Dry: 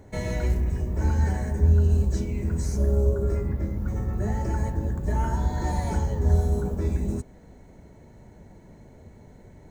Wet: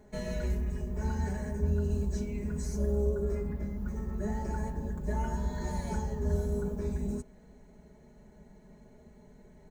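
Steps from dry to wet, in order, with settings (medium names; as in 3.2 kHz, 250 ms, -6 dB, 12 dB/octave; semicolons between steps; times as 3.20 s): comb 4.8 ms, depth 87%; trim -8.5 dB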